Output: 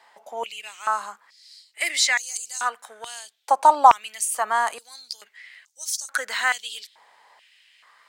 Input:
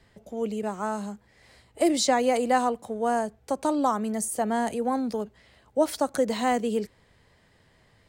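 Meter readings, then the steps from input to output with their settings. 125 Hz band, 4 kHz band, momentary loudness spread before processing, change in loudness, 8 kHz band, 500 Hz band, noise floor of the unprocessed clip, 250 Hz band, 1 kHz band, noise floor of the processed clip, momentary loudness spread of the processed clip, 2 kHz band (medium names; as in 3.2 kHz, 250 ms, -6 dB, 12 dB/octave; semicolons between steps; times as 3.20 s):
no reading, +7.5 dB, 11 LU, +4.5 dB, +7.0 dB, -7.0 dB, -62 dBFS, -20.5 dB, +7.0 dB, -63 dBFS, 21 LU, +10.5 dB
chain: step-sequenced high-pass 2.3 Hz 870–6100 Hz; trim +5 dB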